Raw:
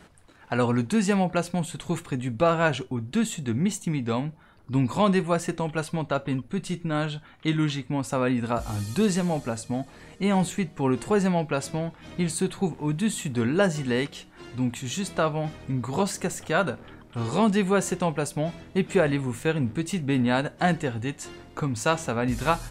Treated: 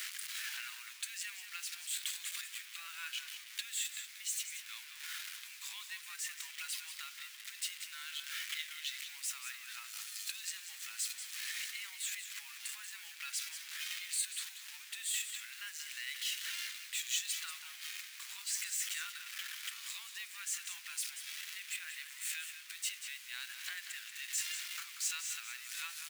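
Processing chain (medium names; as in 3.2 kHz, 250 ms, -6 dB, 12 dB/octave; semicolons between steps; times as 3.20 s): jump at every zero crossing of -29 dBFS; compression 4:1, threshold -29 dBFS, peak gain reduction 11.5 dB; tempo 0.87×; word length cut 8-bit, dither none; inverse Chebyshev high-pass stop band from 560 Hz, stop band 60 dB; delay 186 ms -9.5 dB; trim -1.5 dB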